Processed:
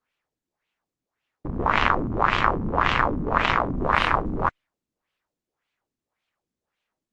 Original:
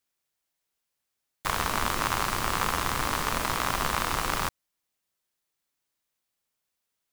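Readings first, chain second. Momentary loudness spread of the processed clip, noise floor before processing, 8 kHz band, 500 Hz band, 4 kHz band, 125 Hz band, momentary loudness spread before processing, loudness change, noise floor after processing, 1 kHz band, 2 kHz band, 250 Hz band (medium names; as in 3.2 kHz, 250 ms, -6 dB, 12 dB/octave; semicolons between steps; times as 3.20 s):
6 LU, -83 dBFS, under -15 dB, +7.5 dB, 0.0 dB, +6.5 dB, 3 LU, +5.0 dB, under -85 dBFS, +6.0 dB, +6.0 dB, +8.5 dB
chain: LFO low-pass sine 1.8 Hz 240–3000 Hz; vibrato 6 Hz 23 cents; trim +6 dB; Opus 20 kbps 48 kHz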